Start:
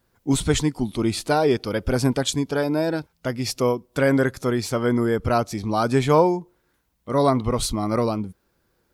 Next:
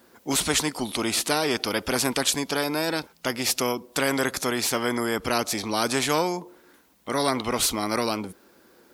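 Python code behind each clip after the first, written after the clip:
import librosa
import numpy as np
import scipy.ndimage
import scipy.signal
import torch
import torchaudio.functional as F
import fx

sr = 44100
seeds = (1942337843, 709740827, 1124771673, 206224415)

y = scipy.signal.sosfilt(scipy.signal.butter(2, 52.0, 'highpass', fs=sr, output='sos'), x)
y = fx.low_shelf_res(y, sr, hz=170.0, db=-12.5, q=1.5)
y = fx.spectral_comp(y, sr, ratio=2.0)
y = y * 10.0 ** (-4.5 / 20.0)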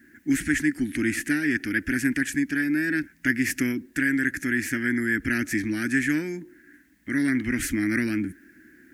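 y = fx.curve_eq(x, sr, hz=(100.0, 190.0, 300.0, 460.0, 1100.0, 1700.0, 3800.0, 6500.0), db=(0, -4, 6, -23, -30, 9, -24, -12))
y = fx.rider(y, sr, range_db=10, speed_s=0.5)
y = fx.quant_dither(y, sr, seeds[0], bits=12, dither='none')
y = y * 10.0 ** (3.0 / 20.0)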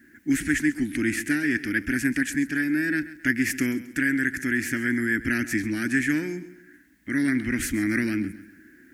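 y = fx.echo_feedback(x, sr, ms=134, feedback_pct=37, wet_db=-16)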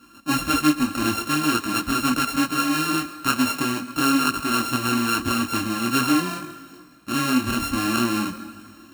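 y = np.r_[np.sort(x[:len(x) // 32 * 32].reshape(-1, 32), axis=1).ravel(), x[len(x) // 32 * 32:]]
y = fx.rev_plate(y, sr, seeds[1], rt60_s=2.4, hf_ratio=0.9, predelay_ms=115, drr_db=16.5)
y = fx.detune_double(y, sr, cents=16)
y = y * 10.0 ** (6.5 / 20.0)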